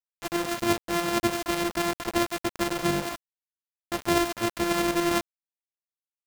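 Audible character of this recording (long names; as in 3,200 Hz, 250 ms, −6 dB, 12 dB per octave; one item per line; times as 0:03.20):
a buzz of ramps at a fixed pitch in blocks of 128 samples
tremolo saw up 11 Hz, depth 50%
a quantiser's noise floor 6 bits, dither none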